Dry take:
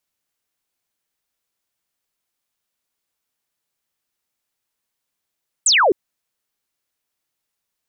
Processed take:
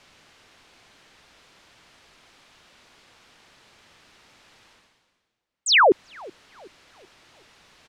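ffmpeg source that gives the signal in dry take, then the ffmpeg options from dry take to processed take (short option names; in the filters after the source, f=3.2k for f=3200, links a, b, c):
-f lavfi -i "aevalsrc='0.282*clip(t/0.002,0,1)*clip((0.26-t)/0.002,0,1)*sin(2*PI*8600*0.26/log(330/8600)*(exp(log(330/8600)*t/0.26)-1))':d=0.26:s=44100"
-filter_complex "[0:a]lowpass=3.9k,areverse,acompressor=mode=upward:threshold=-31dB:ratio=2.5,areverse,asplit=2[a][b];[b]adelay=377,lowpass=f=1k:p=1,volume=-22.5dB,asplit=2[c][d];[d]adelay=377,lowpass=f=1k:p=1,volume=0.52,asplit=2[e][f];[f]adelay=377,lowpass=f=1k:p=1,volume=0.52,asplit=2[g][h];[h]adelay=377,lowpass=f=1k:p=1,volume=0.52[i];[a][c][e][g][i]amix=inputs=5:normalize=0"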